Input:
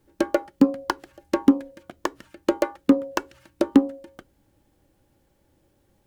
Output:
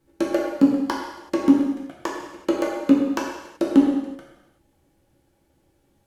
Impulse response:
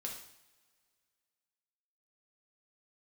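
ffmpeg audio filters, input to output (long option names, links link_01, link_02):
-filter_complex "[1:a]atrim=start_sample=2205,afade=type=out:start_time=0.29:duration=0.01,atrim=end_sample=13230,asetrate=27342,aresample=44100[link_01];[0:a][link_01]afir=irnorm=-1:irlink=0,volume=-1.5dB"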